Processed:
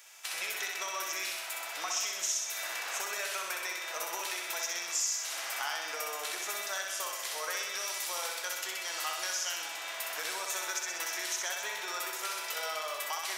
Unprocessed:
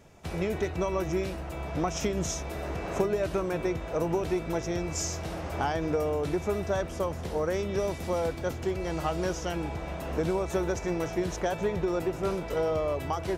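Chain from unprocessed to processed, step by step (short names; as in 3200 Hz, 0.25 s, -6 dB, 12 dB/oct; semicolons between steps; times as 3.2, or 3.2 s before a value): HPF 1400 Hz 12 dB/oct; tilt +3 dB/oct; compressor 3:1, threshold -38 dBFS, peak gain reduction 12 dB; on a send: flutter echo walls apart 10.9 m, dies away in 0.99 s; on the sum: gain +4 dB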